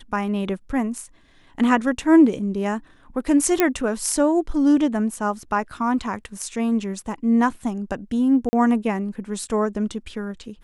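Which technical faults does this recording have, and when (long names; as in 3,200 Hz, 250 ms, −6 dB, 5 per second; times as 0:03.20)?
0:03.60: click −3 dBFS
0:08.49–0:08.53: drop-out 40 ms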